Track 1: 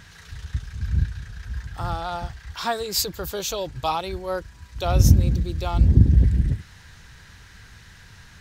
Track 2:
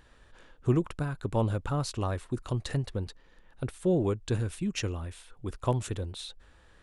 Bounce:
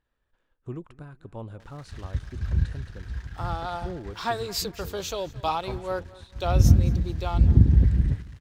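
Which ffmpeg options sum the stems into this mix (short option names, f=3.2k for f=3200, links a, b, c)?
-filter_complex "[0:a]aeval=exprs='sgn(val(0))*max(abs(val(0))-0.00473,0)':c=same,adelay=1600,volume=-1.5dB,asplit=2[a][b];[b]volume=-21dB[c];[1:a]agate=range=-9dB:threshold=-50dB:ratio=16:detection=peak,volume=-11dB,asplit=2[d][e];[e]volume=-21dB[f];[c][f]amix=inputs=2:normalize=0,aecho=0:1:219|438|657|876|1095:1|0.36|0.13|0.0467|0.0168[g];[a][d][g]amix=inputs=3:normalize=0,highshelf=f=5.4k:g=-8.5"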